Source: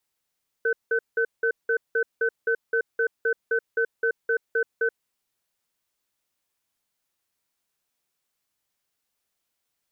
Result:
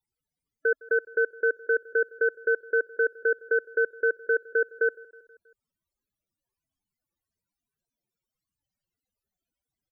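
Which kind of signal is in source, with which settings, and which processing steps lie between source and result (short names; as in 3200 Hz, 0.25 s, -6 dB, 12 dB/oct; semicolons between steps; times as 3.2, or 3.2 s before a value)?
cadence 458 Hz, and 1520 Hz, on 0.08 s, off 0.18 s, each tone -22.5 dBFS 4.24 s
low shelf 290 Hz +6.5 dB; loudest bins only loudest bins 32; feedback echo 0.16 s, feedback 60%, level -23 dB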